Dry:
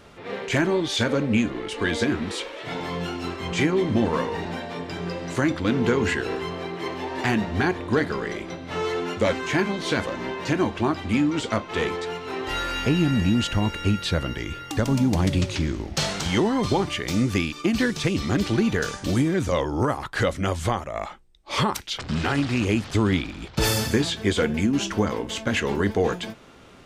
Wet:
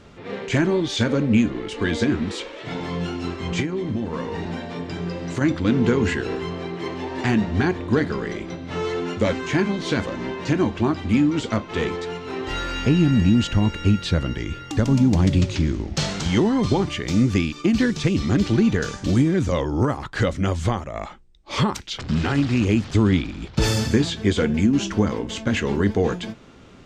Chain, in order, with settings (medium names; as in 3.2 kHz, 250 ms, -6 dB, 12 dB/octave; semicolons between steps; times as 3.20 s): FFT filter 230 Hz 0 dB, 680 Hz -6 dB, 7.2 kHz -5 dB, 11 kHz -16 dB; 3.60–5.41 s: compression 6:1, threshold -27 dBFS, peak gain reduction 9.5 dB; trim +4.5 dB